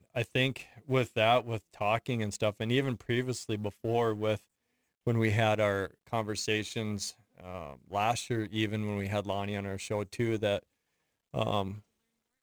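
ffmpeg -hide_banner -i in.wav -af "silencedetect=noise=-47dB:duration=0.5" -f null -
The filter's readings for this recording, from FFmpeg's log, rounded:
silence_start: 4.38
silence_end: 5.07 | silence_duration: 0.69
silence_start: 10.59
silence_end: 11.34 | silence_duration: 0.75
silence_start: 11.80
silence_end: 12.43 | silence_duration: 0.63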